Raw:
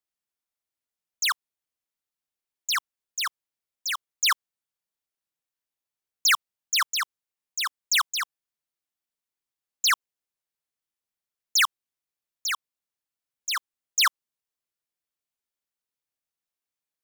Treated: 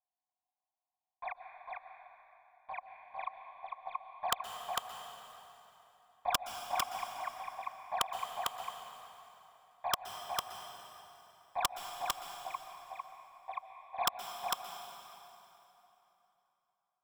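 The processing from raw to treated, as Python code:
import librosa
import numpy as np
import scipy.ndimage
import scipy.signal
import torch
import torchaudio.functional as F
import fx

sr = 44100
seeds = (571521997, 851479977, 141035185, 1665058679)

y = fx.self_delay(x, sr, depth_ms=0.41)
y = fx.low_shelf(y, sr, hz=470.0, db=-11.0)
y = fx.quant_float(y, sr, bits=2)
y = fx.formant_cascade(y, sr, vowel='a')
y = fx.fixed_phaser(y, sr, hz=1900.0, stages=8)
y = (np.mod(10.0 ** (36.5 / 20.0) * y + 1.0, 2.0) - 1.0) / 10.0 ** (36.5 / 20.0)
y = y + 10.0 ** (-3.0 / 20.0) * np.pad(y, (int(451 * sr / 1000.0), 0))[:len(y)]
y = fx.rev_plate(y, sr, seeds[0], rt60_s=3.3, hf_ratio=0.8, predelay_ms=110, drr_db=7.0)
y = y * 10.0 ** (17.0 / 20.0)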